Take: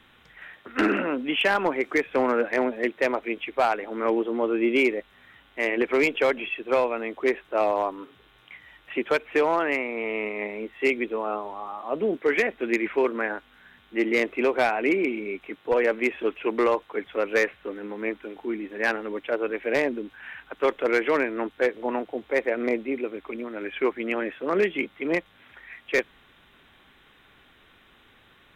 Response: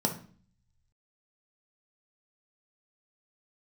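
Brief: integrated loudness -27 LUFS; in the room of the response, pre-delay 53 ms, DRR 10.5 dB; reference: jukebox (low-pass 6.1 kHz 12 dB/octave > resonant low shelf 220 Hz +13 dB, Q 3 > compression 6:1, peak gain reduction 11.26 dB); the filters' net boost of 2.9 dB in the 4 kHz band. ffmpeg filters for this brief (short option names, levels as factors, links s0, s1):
-filter_complex "[0:a]equalizer=f=4000:t=o:g=5,asplit=2[s0][s1];[1:a]atrim=start_sample=2205,adelay=53[s2];[s1][s2]afir=irnorm=-1:irlink=0,volume=0.126[s3];[s0][s3]amix=inputs=2:normalize=0,lowpass=6100,lowshelf=f=220:t=q:w=3:g=13,acompressor=threshold=0.0447:ratio=6,volume=1.78"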